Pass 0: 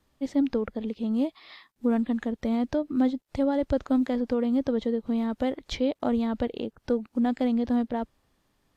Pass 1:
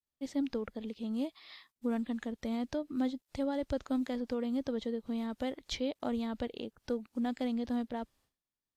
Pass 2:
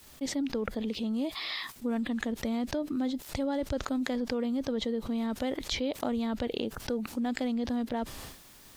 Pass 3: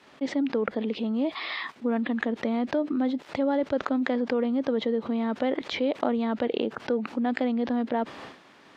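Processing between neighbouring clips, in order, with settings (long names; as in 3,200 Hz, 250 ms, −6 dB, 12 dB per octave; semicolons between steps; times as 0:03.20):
high-shelf EQ 2,600 Hz +9.5 dB; downward expander −54 dBFS; level −9 dB
envelope flattener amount 70%
band-pass filter 240–2,400 Hz; level +7 dB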